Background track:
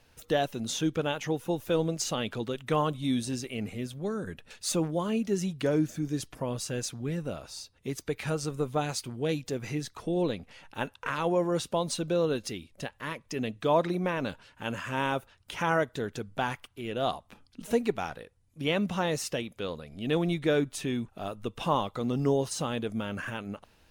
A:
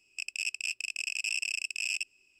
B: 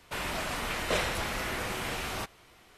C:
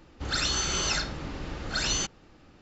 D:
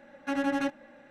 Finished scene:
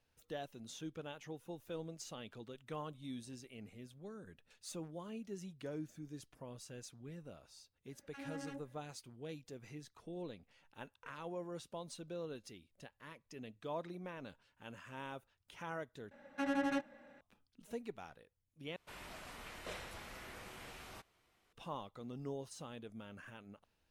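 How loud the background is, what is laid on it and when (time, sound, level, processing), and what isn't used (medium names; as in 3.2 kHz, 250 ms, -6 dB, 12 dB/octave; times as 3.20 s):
background track -17.5 dB
7.86 s: add D -17.5 dB + bands offset in time highs, lows 40 ms, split 880 Hz
16.11 s: replace with D -6.5 dB + band-stop 340 Hz, Q 9.8
18.76 s: replace with B -17.5 dB
not used: A, C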